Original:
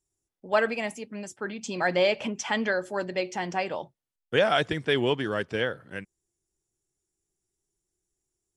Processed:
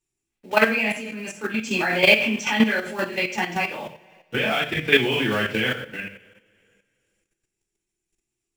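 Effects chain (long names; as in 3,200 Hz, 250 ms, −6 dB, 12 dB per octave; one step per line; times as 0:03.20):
one scale factor per block 5 bits
parametric band 2,500 Hz +13.5 dB 0.78 octaves
0:02.67–0:04.82: downward compressor 10 to 1, threshold −22 dBFS, peak gain reduction 10.5 dB
low-shelf EQ 360 Hz +4.5 dB
mains-hum notches 60/120/180/240 Hz
coupled-rooms reverb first 0.44 s, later 2.1 s, from −25 dB, DRR −8.5 dB
output level in coarse steps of 10 dB
level −2.5 dB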